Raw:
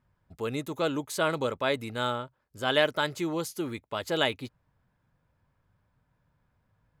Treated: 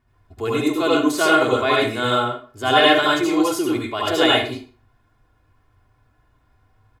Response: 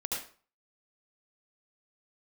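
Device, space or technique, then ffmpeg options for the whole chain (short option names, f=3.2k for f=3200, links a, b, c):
microphone above a desk: -filter_complex "[0:a]highshelf=f=10k:g=-4.5,aecho=1:1:2.8:0.76[a];[1:a]atrim=start_sample=2205[b];[a][b]afir=irnorm=-1:irlink=0,volume=6.5dB"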